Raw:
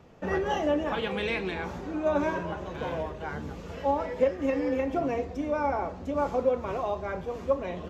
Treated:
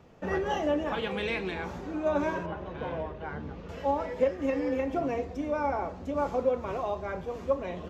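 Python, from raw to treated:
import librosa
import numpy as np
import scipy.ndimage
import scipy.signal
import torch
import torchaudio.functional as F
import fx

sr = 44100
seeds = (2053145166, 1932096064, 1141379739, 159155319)

y = fx.air_absorb(x, sr, metres=190.0, at=(2.46, 3.69))
y = y * 10.0 ** (-1.5 / 20.0)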